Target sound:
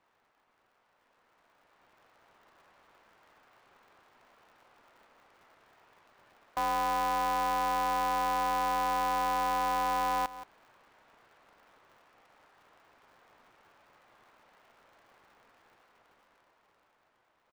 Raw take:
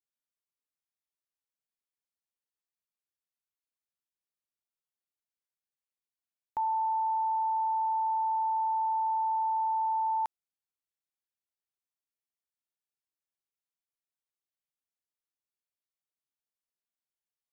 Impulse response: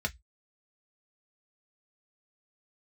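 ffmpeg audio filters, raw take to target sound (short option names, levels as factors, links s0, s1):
-filter_complex "[0:a]aeval=exprs='val(0)+0.5*0.00841*sgn(val(0))':c=same,highpass=620,dynaudnorm=f=320:g=11:m=3.16,lowpass=1100,asplit=2[s0][s1];[s1]adelay=174.9,volume=0.141,highshelf=f=4000:g=-3.94[s2];[s0][s2]amix=inputs=2:normalize=0,alimiter=limit=0.0891:level=0:latency=1:release=146,aeval=exprs='val(0)*sgn(sin(2*PI*120*n/s))':c=same,volume=0.531"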